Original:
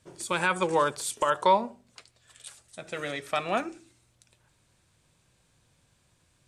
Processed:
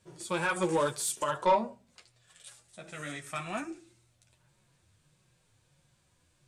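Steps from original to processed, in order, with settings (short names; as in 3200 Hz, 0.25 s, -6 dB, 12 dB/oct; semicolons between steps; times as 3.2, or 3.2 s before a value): 2.92–3.7 ten-band EQ 500 Hz -10 dB, 4000 Hz -6 dB, 8000 Hz +9 dB; chorus voices 4, 0.79 Hz, delay 10 ms, depth 4.6 ms; 0.48–1.24 high shelf 6100 Hz +10 dB; soft clip -19.5 dBFS, distortion -13 dB; harmonic-percussive split harmonic +6 dB; gain -3.5 dB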